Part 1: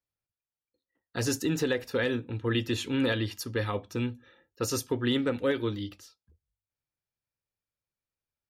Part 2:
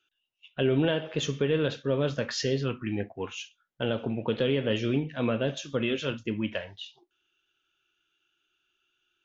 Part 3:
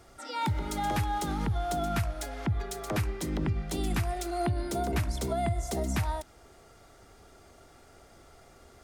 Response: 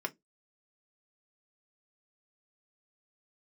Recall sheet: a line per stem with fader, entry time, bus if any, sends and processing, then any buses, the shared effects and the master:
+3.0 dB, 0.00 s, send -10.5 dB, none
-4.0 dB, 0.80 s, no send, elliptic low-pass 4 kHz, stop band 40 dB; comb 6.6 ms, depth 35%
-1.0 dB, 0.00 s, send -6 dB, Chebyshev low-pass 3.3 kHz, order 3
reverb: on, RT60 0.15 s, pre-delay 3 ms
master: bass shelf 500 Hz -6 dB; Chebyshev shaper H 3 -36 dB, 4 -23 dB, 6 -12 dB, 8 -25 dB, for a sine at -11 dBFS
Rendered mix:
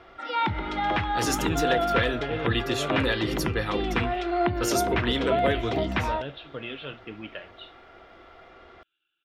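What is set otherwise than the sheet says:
stem 1: send -10.5 dB -> -20 dB; stem 3 -1.0 dB -> +5.5 dB; master: missing Chebyshev shaper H 3 -36 dB, 4 -23 dB, 6 -12 dB, 8 -25 dB, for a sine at -11 dBFS

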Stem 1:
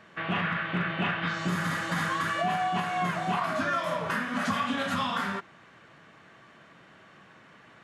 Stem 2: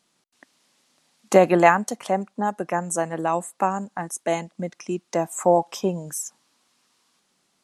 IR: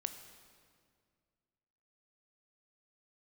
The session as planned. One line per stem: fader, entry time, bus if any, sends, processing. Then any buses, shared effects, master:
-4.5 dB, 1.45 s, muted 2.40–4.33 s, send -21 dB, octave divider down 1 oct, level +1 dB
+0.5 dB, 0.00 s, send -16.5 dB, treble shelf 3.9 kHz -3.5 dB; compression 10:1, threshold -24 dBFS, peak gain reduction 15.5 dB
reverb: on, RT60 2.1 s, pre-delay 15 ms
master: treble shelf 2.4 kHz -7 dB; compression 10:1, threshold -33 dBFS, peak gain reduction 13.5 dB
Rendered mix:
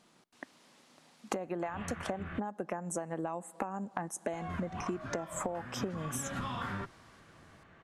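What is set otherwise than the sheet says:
stem 1: send off; stem 2 +0.5 dB -> +6.5 dB

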